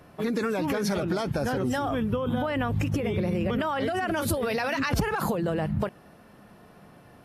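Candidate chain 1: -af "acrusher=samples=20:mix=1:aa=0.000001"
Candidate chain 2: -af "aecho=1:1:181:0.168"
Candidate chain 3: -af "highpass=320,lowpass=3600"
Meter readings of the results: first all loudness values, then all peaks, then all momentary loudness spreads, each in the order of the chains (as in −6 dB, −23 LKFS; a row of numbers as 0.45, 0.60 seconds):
−27.5, −27.5, −30.5 LKFS; −14.0, −13.0, −14.5 dBFS; 1, 1, 4 LU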